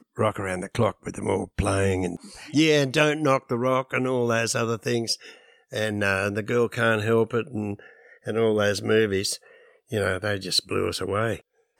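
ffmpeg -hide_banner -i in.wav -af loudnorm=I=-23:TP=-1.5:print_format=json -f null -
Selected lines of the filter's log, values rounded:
"input_i" : "-24.8",
"input_tp" : "-5.4",
"input_lra" : "2.2",
"input_thresh" : "-35.2",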